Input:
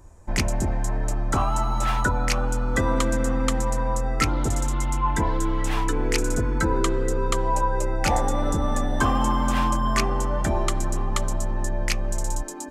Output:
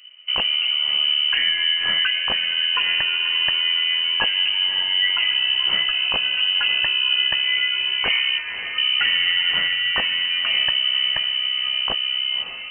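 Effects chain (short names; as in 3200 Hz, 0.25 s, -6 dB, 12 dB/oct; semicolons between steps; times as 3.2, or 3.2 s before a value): 8.38–8.78 HPF 660 Hz; diffused feedback echo 0.568 s, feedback 50%, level -11 dB; inverted band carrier 3000 Hz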